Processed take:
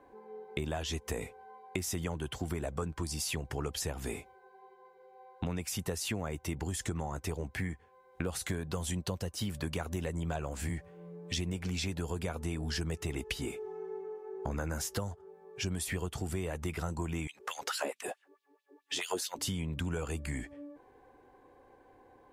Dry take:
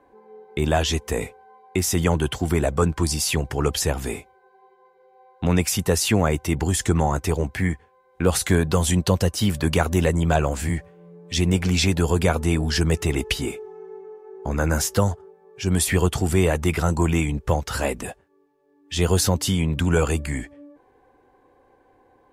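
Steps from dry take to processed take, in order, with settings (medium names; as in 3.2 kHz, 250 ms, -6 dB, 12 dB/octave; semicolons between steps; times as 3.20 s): 17.27–19.39 s: LFO high-pass sine 4.6 Hz 290–3700 Hz; compression 6:1, threshold -31 dBFS, peak gain reduction 17 dB; trim -2 dB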